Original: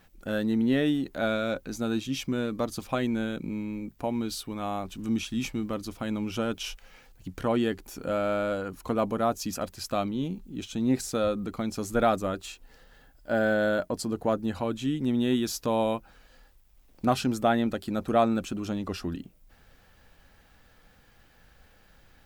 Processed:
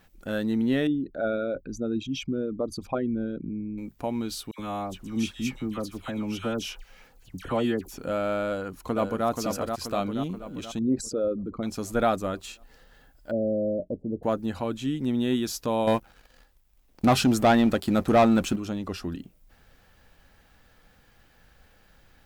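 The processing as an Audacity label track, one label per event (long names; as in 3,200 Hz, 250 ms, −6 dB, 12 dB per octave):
0.870000	3.780000	spectral envelope exaggerated exponent 2
4.510000	7.980000	all-pass dispersion lows, late by 76 ms, half as late at 1,700 Hz
8.480000	9.270000	delay throw 480 ms, feedback 55%, level −4.5 dB
10.790000	11.630000	spectral envelope exaggerated exponent 2
13.310000	14.230000	elliptic low-pass filter 580 Hz, stop band 60 dB
15.870000	18.560000	leveller curve on the samples passes 2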